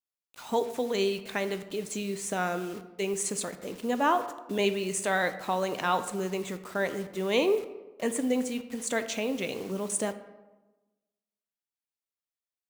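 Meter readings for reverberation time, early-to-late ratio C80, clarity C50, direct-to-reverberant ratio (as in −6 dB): 1.1 s, 14.0 dB, 12.5 dB, 10.0 dB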